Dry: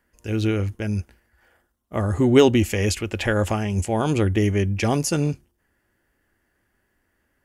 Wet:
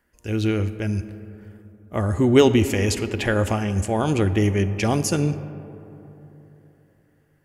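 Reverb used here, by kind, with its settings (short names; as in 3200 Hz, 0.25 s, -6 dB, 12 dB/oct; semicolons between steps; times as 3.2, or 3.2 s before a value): digital reverb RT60 3.5 s, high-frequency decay 0.35×, pre-delay 5 ms, DRR 12.5 dB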